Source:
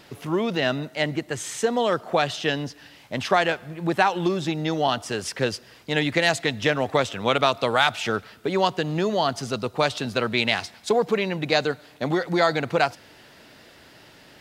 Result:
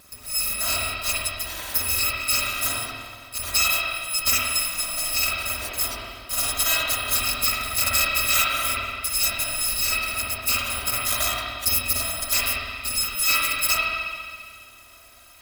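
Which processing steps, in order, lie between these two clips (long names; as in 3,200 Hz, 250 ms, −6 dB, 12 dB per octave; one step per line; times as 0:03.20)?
samples in bit-reversed order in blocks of 256 samples
change of speed 0.935×
spring reverb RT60 2 s, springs 45/57 ms, chirp 40 ms, DRR −5.5 dB
level −2 dB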